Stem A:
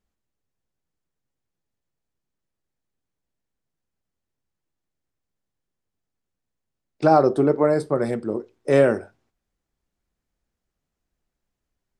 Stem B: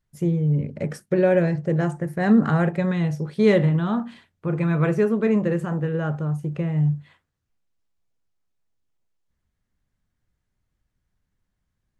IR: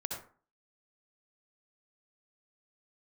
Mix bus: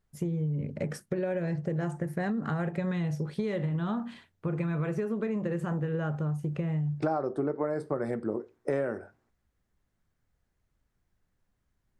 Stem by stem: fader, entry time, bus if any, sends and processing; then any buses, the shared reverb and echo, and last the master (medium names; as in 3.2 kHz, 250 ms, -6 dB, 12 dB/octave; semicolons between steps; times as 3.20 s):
-1.0 dB, 0.00 s, no send, resonant high shelf 2.3 kHz -6.5 dB, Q 1.5
-2.0 dB, 0.00 s, no send, compression, threshold -22 dBFS, peak gain reduction 10 dB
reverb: none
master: compression 6:1, threshold -27 dBFS, peak gain reduction 15 dB